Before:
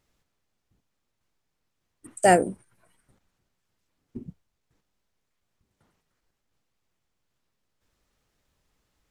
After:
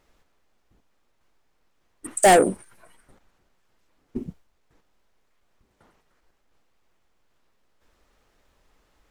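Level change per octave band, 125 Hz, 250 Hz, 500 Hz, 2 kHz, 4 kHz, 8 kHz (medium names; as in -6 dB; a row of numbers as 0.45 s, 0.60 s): -1.0 dB, +2.5 dB, +4.0 dB, +3.0 dB, +8.0 dB, +7.5 dB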